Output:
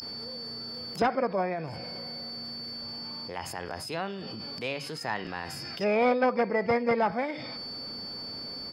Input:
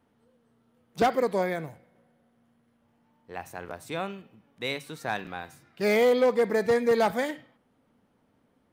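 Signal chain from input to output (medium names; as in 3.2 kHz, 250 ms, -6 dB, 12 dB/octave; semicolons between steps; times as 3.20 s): low-pass that closes with the level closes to 1.8 kHz, closed at -23.5 dBFS; whistle 4.5 kHz -34 dBFS; formant shift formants +2 st; trim -2 dB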